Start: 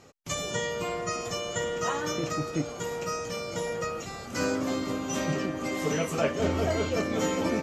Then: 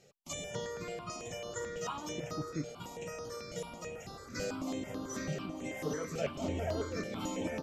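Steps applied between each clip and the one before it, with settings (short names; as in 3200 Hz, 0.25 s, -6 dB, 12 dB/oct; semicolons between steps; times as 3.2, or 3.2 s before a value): step phaser 9.1 Hz 280–7600 Hz; gain -6.5 dB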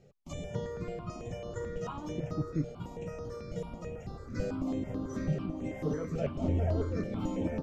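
tilt -3.5 dB/oct; gain -2 dB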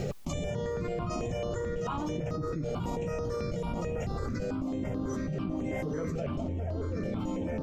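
fast leveller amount 100%; gain -6.5 dB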